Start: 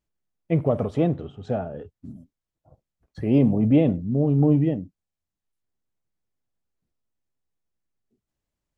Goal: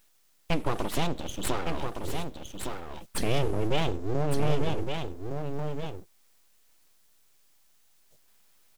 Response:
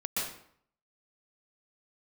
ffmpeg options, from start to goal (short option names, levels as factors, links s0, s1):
-filter_complex "[0:a]acompressor=threshold=0.0158:ratio=2.5,aexciter=amount=5.8:drive=8.1:freq=2500,aeval=exprs='abs(val(0))':c=same,asplit=2[s0][s1];[s1]aecho=0:1:1162:0.501[s2];[s0][s2]amix=inputs=2:normalize=0,volume=2.51"